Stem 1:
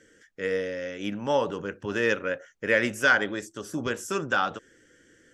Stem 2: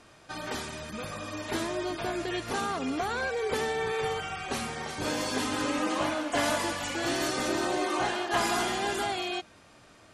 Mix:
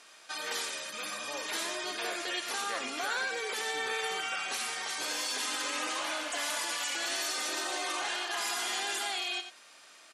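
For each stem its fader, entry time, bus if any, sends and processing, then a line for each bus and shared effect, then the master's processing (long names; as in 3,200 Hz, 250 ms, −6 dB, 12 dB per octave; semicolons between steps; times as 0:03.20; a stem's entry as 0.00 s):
−17.5 dB, 0.00 s, no send, no echo send, no processing
+0.5 dB, 0.00 s, no send, echo send −10 dB, high-pass filter 330 Hz 6 dB per octave; tilt shelving filter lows −6 dB, about 1,400 Hz; brickwall limiter −25 dBFS, peak gain reduction 9.5 dB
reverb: not used
echo: single-tap delay 90 ms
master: Bessel high-pass filter 170 Hz, order 2; low-shelf EQ 230 Hz −10 dB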